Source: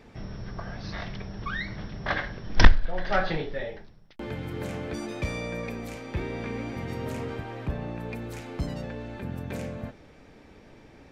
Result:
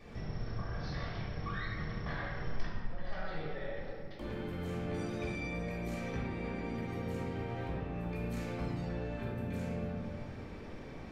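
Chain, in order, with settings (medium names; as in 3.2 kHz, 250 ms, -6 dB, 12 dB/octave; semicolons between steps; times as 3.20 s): compression 20:1, threshold -39 dBFS, peak gain reduction 33 dB; reverberation RT60 2.6 s, pre-delay 3 ms, DRR -8.5 dB; trim -7 dB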